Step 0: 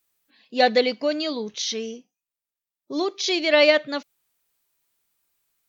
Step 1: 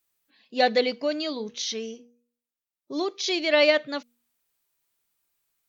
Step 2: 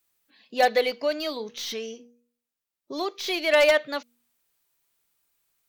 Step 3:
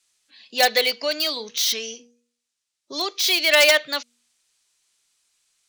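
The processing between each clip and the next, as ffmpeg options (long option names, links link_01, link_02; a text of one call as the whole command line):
ffmpeg -i in.wav -af "bandreject=frequency=239:width_type=h:width=4,bandreject=frequency=478:width_type=h:width=4,volume=-3dB" out.wav
ffmpeg -i in.wav -filter_complex "[0:a]acrossover=split=430|2900[link_01][link_02][link_03];[link_01]acompressor=threshold=-43dB:ratio=6[link_04];[link_03]aeval=exprs='(tanh(79.4*val(0)+0.15)-tanh(0.15))/79.4':channel_layout=same[link_05];[link_04][link_02][link_05]amix=inputs=3:normalize=0,aeval=exprs='0.2*(abs(mod(val(0)/0.2+3,4)-2)-1)':channel_layout=same,volume=3dB" out.wav
ffmpeg -i in.wav -filter_complex "[0:a]acrossover=split=110|580|7900[link_01][link_02][link_03][link_04];[link_04]acrusher=bits=5:dc=4:mix=0:aa=0.000001[link_05];[link_01][link_02][link_03][link_05]amix=inputs=4:normalize=0,crystalizer=i=8.5:c=0,volume=-2.5dB" out.wav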